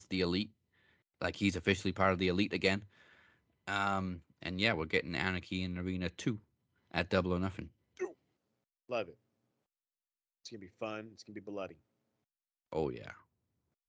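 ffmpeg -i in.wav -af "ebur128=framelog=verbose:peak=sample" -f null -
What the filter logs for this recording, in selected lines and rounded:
Integrated loudness:
  I:         -35.7 LUFS
  Threshold: -46.7 LUFS
Loudness range:
  LRA:        12.6 LU
  Threshold: -57.7 LUFS
  LRA low:   -46.9 LUFS
  LRA high:  -34.3 LUFS
Sample peak:
  Peak:      -14.0 dBFS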